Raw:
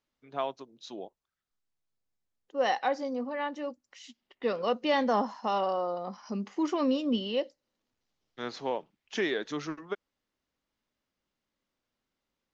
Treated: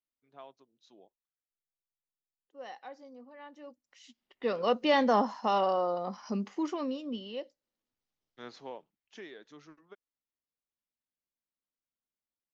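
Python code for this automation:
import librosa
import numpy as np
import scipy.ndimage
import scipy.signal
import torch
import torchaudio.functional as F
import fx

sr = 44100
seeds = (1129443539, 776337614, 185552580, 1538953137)

y = fx.gain(x, sr, db=fx.line((3.33, -17.5), (4.03, -6.5), (4.72, 1.5), (6.35, 1.5), (6.97, -9.0), (8.5, -9.0), (9.32, -18.0)))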